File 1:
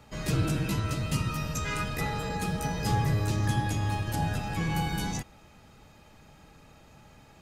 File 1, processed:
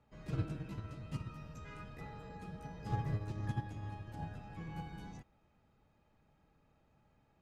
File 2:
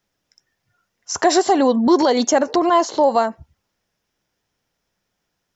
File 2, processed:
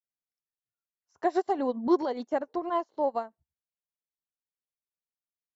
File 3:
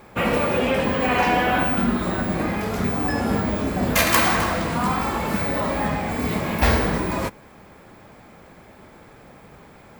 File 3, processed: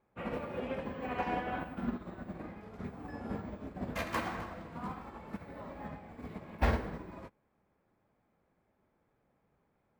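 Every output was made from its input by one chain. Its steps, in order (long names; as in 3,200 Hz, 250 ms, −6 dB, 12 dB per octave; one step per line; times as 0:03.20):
low-pass filter 1,600 Hz 6 dB per octave
expander for the loud parts 2.5 to 1, over −29 dBFS
level −7 dB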